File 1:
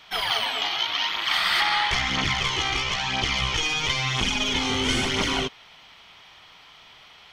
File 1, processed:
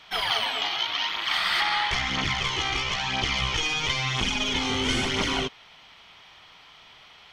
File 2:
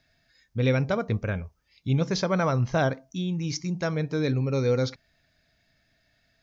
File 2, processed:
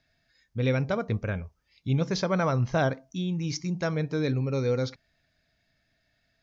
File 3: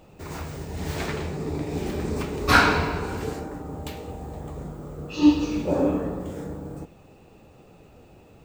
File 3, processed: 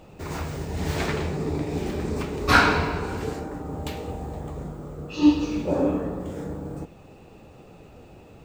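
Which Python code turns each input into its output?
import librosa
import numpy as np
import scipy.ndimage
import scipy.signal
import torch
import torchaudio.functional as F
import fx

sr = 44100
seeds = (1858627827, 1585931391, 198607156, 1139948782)

y = fx.high_shelf(x, sr, hz=10000.0, db=-5.5)
y = fx.rider(y, sr, range_db=5, speed_s=2.0)
y = y * librosa.db_to_amplitude(-1.5)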